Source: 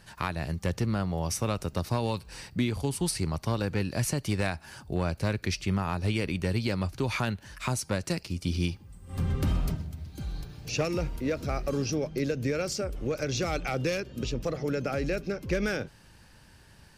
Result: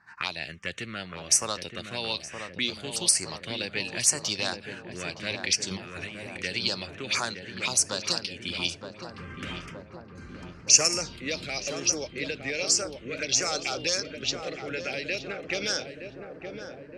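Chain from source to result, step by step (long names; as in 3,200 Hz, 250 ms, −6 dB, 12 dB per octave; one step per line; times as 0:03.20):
meter weighting curve ITU-R 468
low-pass that shuts in the quiet parts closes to 1,600 Hz, open at −23.5 dBFS
0:05.69–0:06.36: compressor whose output falls as the input rises −40 dBFS, ratio −1
0:10.15–0:11.73: bass and treble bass +4 dB, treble +11 dB
phaser swept by the level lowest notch 520 Hz, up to 3,700 Hz, full sweep at −21.5 dBFS
feedback echo with a low-pass in the loop 918 ms, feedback 78%, low-pass 1,200 Hz, level −5.5 dB
one half of a high-frequency compander decoder only
level +3 dB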